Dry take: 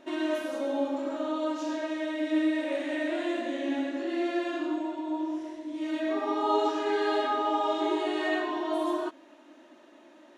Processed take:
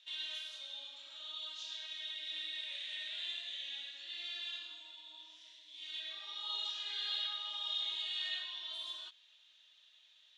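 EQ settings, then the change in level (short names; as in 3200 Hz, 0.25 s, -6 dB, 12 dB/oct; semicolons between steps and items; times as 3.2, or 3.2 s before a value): ladder band-pass 3800 Hz, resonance 70%; +8.5 dB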